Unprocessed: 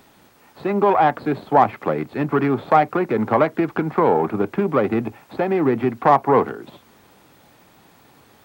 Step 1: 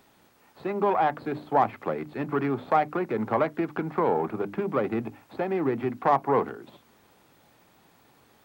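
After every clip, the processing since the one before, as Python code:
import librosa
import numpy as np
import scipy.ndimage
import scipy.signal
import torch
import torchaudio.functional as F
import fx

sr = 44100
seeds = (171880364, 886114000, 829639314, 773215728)

y = fx.hum_notches(x, sr, base_hz=50, count=6)
y = F.gain(torch.from_numpy(y), -7.5).numpy()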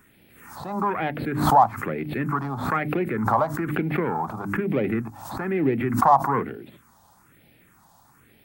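y = fx.phaser_stages(x, sr, stages=4, low_hz=370.0, high_hz=1100.0, hz=1.1, feedback_pct=35)
y = fx.pre_swell(y, sr, db_per_s=61.0)
y = F.gain(torch.from_numpy(y), 5.5).numpy()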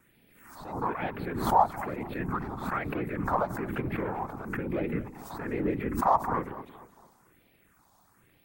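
y = fx.echo_feedback(x, sr, ms=227, feedback_pct=42, wet_db=-16.5)
y = fx.whisperise(y, sr, seeds[0])
y = F.gain(torch.from_numpy(y), -7.0).numpy()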